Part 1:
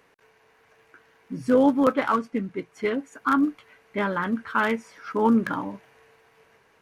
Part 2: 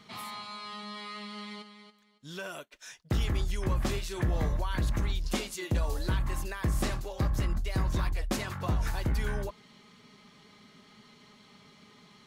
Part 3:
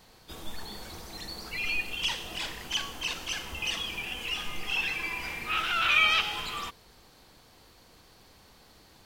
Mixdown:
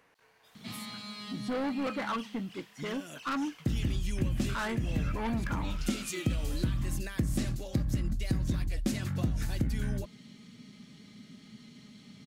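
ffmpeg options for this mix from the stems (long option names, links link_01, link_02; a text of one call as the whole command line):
ffmpeg -i stem1.wav -i stem2.wav -i stem3.wav -filter_complex "[0:a]asoftclip=type=tanh:threshold=-24dB,volume=-4.5dB,asplit=3[link_01][link_02][link_03];[link_01]atrim=end=3.81,asetpts=PTS-STARTPTS,afade=type=out:start_time=3.806:duration=0.004:curve=hsin[link_04];[link_02]atrim=start=3.81:end=4.49,asetpts=PTS-STARTPTS,volume=0[link_05];[link_03]atrim=start=4.49,asetpts=PTS-STARTPTS,afade=type=in:duration=0.004:curve=hsin[link_06];[link_04][link_05][link_06]concat=n=3:v=0:a=1,asplit=2[link_07][link_08];[1:a]equalizer=frequency=125:width_type=o:width=1:gain=6,equalizer=frequency=250:width_type=o:width=1:gain=8,equalizer=frequency=1000:width_type=o:width=1:gain=-12,equalizer=frequency=8000:width_type=o:width=1:gain=3,adelay=550,volume=0.5dB[link_09];[2:a]highpass=890,asoftclip=type=tanh:threshold=-27dB,adelay=150,volume=-17dB[link_10];[link_08]apad=whole_len=564931[link_11];[link_09][link_11]sidechaincompress=threshold=-38dB:ratio=8:attack=16:release=534[link_12];[link_07][link_12]amix=inputs=2:normalize=0,equalizer=frequency=410:width_type=o:width=0.25:gain=-7,acompressor=threshold=-28dB:ratio=2.5,volume=0dB[link_13];[link_10][link_13]amix=inputs=2:normalize=0" out.wav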